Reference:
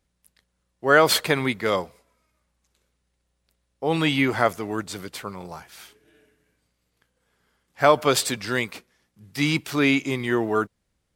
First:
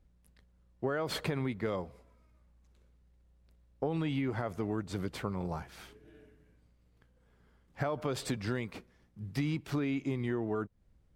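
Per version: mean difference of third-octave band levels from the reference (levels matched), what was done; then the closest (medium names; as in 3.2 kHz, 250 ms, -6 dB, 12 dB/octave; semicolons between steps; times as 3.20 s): 6.5 dB: tilt EQ -3 dB/octave; peak limiter -9.5 dBFS, peak gain reduction 8 dB; compression 8:1, threshold -28 dBFS, peak gain reduction 13.5 dB; trim -2 dB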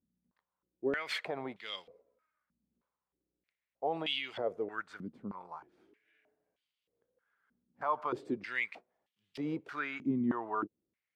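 10.0 dB: bass shelf 410 Hz +8 dB; peak limiter -9.5 dBFS, peak gain reduction 9.5 dB; step-sequenced band-pass 3.2 Hz 230–3100 Hz; trim -3 dB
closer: first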